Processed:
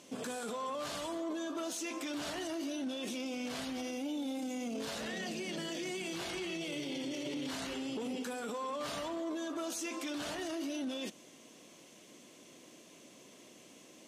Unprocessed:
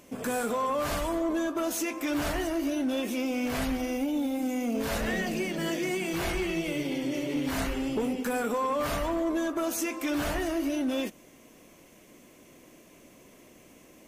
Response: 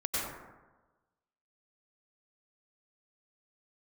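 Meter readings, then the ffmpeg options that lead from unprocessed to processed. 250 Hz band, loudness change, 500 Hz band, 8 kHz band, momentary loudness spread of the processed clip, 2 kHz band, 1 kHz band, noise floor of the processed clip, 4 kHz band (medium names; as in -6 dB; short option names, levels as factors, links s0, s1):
-9.5 dB, -8.5 dB, -9.5 dB, -5.5 dB, 18 LU, -9.0 dB, -9.5 dB, -58 dBFS, -3.0 dB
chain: -af "aexciter=amount=2.7:drive=6:freq=3100,highpass=150,lowpass=5500,alimiter=level_in=1.68:limit=0.0631:level=0:latency=1:release=17,volume=0.596,volume=0.708"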